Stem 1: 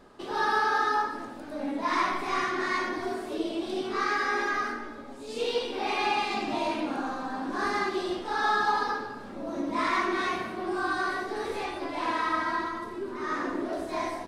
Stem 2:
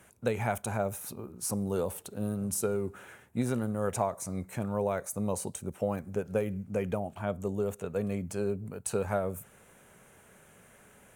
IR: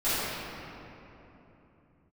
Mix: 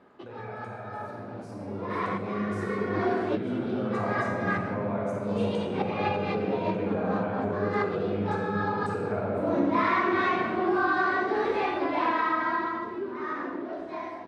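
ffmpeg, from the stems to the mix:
-filter_complex "[0:a]acompressor=threshold=-28dB:ratio=6,volume=-3dB[a];[1:a]acompressor=threshold=-32dB:ratio=6,volume=-15dB,asplit=3[b][c][d];[c]volume=-3dB[e];[d]apad=whole_len=629314[f];[a][f]sidechaincompress=threshold=-59dB:ratio=8:attack=16:release=164[g];[2:a]atrim=start_sample=2205[h];[e][h]afir=irnorm=-1:irlink=0[i];[g][b][i]amix=inputs=3:normalize=0,dynaudnorm=f=300:g=13:m=10.5dB,highpass=110,lowpass=2.6k"

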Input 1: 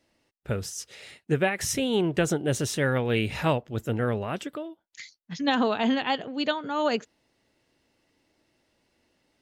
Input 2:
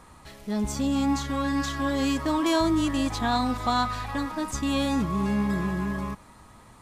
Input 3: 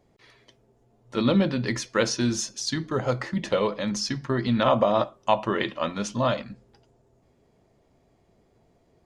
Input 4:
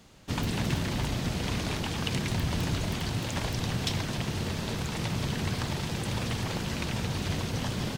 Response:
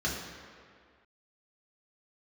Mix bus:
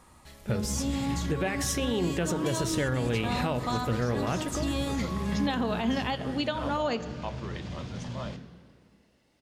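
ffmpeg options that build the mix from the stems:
-filter_complex "[0:a]volume=1dB,asplit=3[a][b][c];[b]volume=-20dB[d];[1:a]highshelf=f=6.2k:g=5.5,volume=-5.5dB,asplit=2[e][f];[f]volume=-19.5dB[g];[2:a]adelay=1950,volume=-16dB[h];[3:a]lowpass=5.8k,adelay=400,volume=-9.5dB,asplit=2[i][j];[j]volume=-11.5dB[k];[c]apad=whole_len=369168[l];[i][l]sidechaincompress=threshold=-26dB:ratio=8:attack=16:release=1300[m];[4:a]atrim=start_sample=2205[n];[d][g][k]amix=inputs=3:normalize=0[o];[o][n]afir=irnorm=-1:irlink=0[p];[a][e][h][m][p]amix=inputs=5:normalize=0,alimiter=limit=-19dB:level=0:latency=1:release=134"

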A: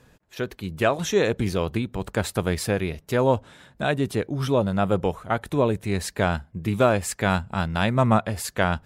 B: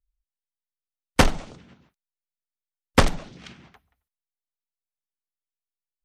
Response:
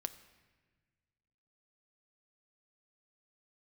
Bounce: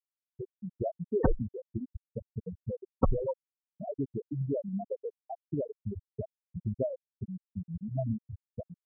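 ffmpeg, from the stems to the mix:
-filter_complex "[0:a]highshelf=f=3.7k:g=-12,acompressor=threshold=-31dB:ratio=2.5,volume=1dB[a];[1:a]aeval=exprs='sgn(val(0))*max(abs(val(0))-0.0075,0)':c=same,adelay=50,volume=-6.5dB[b];[a][b]amix=inputs=2:normalize=0,afftfilt=real='re*gte(hypot(re,im),0.251)':imag='im*gte(hypot(re,im),0.251)':win_size=1024:overlap=0.75"

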